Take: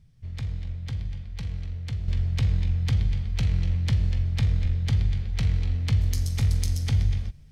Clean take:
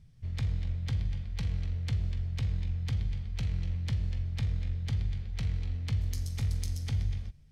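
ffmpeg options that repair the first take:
ffmpeg -i in.wav -filter_complex "[0:a]asplit=3[link_01][link_02][link_03];[link_01]afade=type=out:start_time=4.62:duration=0.02[link_04];[link_02]highpass=frequency=140:width=0.5412,highpass=frequency=140:width=1.3066,afade=type=in:start_time=4.62:duration=0.02,afade=type=out:start_time=4.74:duration=0.02[link_05];[link_03]afade=type=in:start_time=4.74:duration=0.02[link_06];[link_04][link_05][link_06]amix=inputs=3:normalize=0,asetnsamples=nb_out_samples=441:pad=0,asendcmd='2.08 volume volume -8dB',volume=0dB" out.wav

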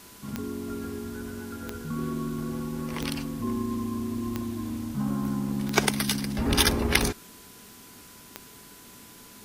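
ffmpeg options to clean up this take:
ffmpeg -i in.wav -af "adeclick=threshold=4,bandreject=frequency=1000:width=30,afwtdn=0.0035" out.wav

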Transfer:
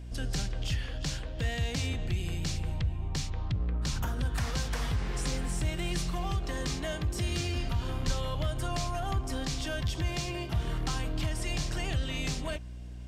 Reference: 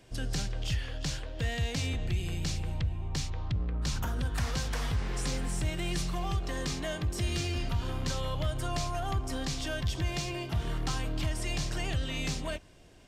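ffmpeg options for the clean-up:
ffmpeg -i in.wav -filter_complex "[0:a]bandreject=frequency=60.5:width_type=h:width=4,bandreject=frequency=121:width_type=h:width=4,bandreject=frequency=181.5:width_type=h:width=4,bandreject=frequency=242:width_type=h:width=4,bandreject=frequency=302.5:width_type=h:width=4,asplit=3[link_01][link_02][link_03];[link_01]afade=type=out:start_time=8.06:duration=0.02[link_04];[link_02]highpass=frequency=140:width=0.5412,highpass=frequency=140:width=1.3066,afade=type=in:start_time=8.06:duration=0.02,afade=type=out:start_time=8.18:duration=0.02[link_05];[link_03]afade=type=in:start_time=8.18:duration=0.02[link_06];[link_04][link_05][link_06]amix=inputs=3:normalize=0" out.wav

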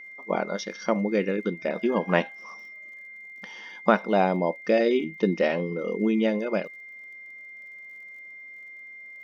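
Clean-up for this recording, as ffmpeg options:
ffmpeg -i in.wav -af "adeclick=threshold=4,bandreject=frequency=2100:width=30" out.wav

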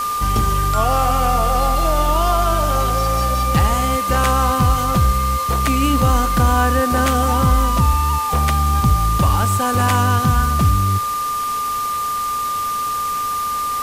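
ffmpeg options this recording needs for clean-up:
ffmpeg -i in.wav -af "bandreject=frequency=433.9:width_type=h:width=4,bandreject=frequency=867.8:width_type=h:width=4,bandreject=frequency=1301.7:width_type=h:width=4,bandreject=frequency=1735.6:width_type=h:width=4,bandreject=frequency=1200:width=30,afwtdn=0.028" out.wav

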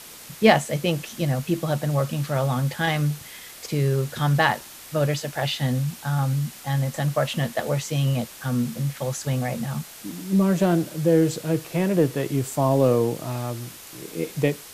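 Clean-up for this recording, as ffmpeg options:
ffmpeg -i in.wav -af "afwtdn=0.0089" out.wav

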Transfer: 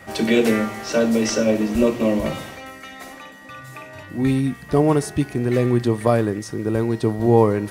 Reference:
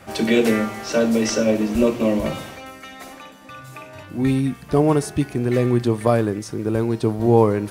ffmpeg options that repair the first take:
ffmpeg -i in.wav -af "bandreject=frequency=1900:width=30" out.wav

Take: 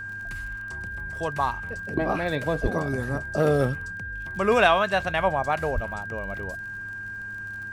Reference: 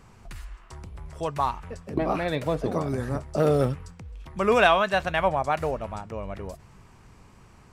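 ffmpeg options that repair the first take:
ffmpeg -i in.wav -filter_complex "[0:a]adeclick=threshold=4,bandreject=frequency=101.6:width_type=h:width=4,bandreject=frequency=203.2:width_type=h:width=4,bandreject=frequency=304.8:width_type=h:width=4,bandreject=frequency=1600:width=30,asplit=3[link_01][link_02][link_03];[link_01]afade=type=out:start_time=2.62:duration=0.02[link_04];[link_02]highpass=frequency=140:width=0.5412,highpass=frequency=140:width=1.3066,afade=type=in:start_time=2.62:duration=0.02,afade=type=out:start_time=2.74:duration=0.02[link_05];[link_03]afade=type=in:start_time=2.74:duration=0.02[link_06];[link_04][link_05][link_06]amix=inputs=3:normalize=0,asplit=3[link_07][link_08][link_09];[link_07]afade=type=out:start_time=5.74:duration=0.02[link_10];[link_08]highpass=frequency=140:width=0.5412,highpass=frequency=140:width=1.3066,afade=type=in:start_time=5.74:duration=0.02,afade=type=out:start_time=5.86:duration=0.02[link_11];[link_09]afade=type=in:start_time=5.86:duration=0.02[link_12];[link_10][link_11][link_12]amix=inputs=3:normalize=0" out.wav

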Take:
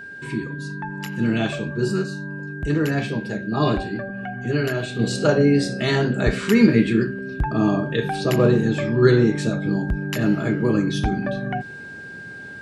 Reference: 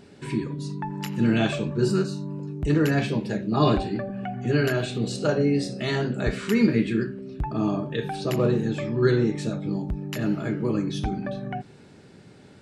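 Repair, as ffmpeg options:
ffmpeg -i in.wav -af "bandreject=frequency=1600:width=30,asetnsamples=nb_out_samples=441:pad=0,asendcmd='4.99 volume volume -5.5dB',volume=0dB" out.wav

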